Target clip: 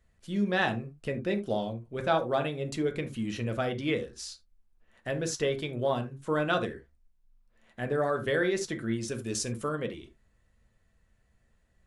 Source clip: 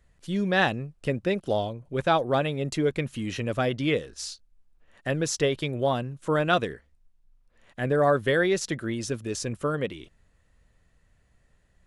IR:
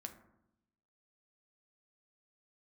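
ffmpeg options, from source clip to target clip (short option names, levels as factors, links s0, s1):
-filter_complex "[0:a]asettb=1/sr,asplit=3[s0][s1][s2];[s0]atrim=end=9.084[s3];[s1]atrim=start=9.08:end=9.69,asetpts=PTS-STARTPTS,afade=t=in:d=0.004:c=qsin,afade=t=out:st=0.606:d=0.004:c=qsin,highshelf=f=3400:g=8.5[s4];[s2]atrim=start=9.686[s5];[s3][s4]acrossfade=d=0.004:c1=hsin:c2=qsin[s6];[s6][s5]acrossfade=d=0.004:c1=qsin:c2=hsin[s7];[1:a]atrim=start_sample=2205,atrim=end_sample=3969[s8];[s7][s8]afir=irnorm=-1:irlink=0"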